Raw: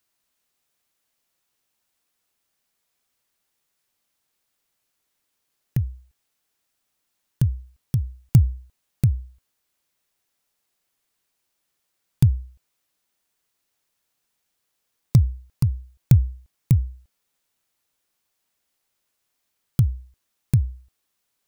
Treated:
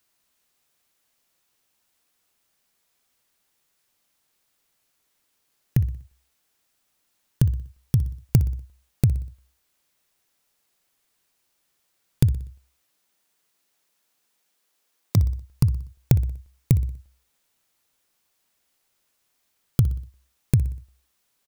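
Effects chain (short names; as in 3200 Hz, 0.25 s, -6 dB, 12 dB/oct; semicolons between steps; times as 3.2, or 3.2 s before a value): 12.33–15.16 HPF 71 Hz -> 270 Hz 12 dB/oct; compressor, threshold -18 dBFS, peak gain reduction 9 dB; feedback echo 61 ms, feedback 48%, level -17 dB; gain +4 dB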